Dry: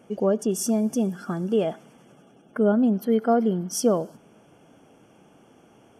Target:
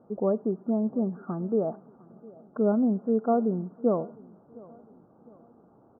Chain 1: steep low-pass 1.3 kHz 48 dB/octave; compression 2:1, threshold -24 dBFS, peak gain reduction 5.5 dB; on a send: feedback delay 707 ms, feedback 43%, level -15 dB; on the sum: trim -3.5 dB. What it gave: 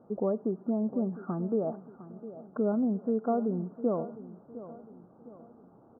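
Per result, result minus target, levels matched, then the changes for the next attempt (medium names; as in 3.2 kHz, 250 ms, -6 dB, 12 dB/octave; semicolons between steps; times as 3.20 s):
compression: peak gain reduction +5.5 dB; echo-to-direct +8 dB
remove: compression 2:1, threshold -24 dBFS, peak gain reduction 5.5 dB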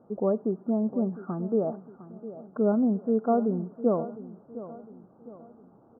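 echo-to-direct +8 dB
change: feedback delay 707 ms, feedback 43%, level -23 dB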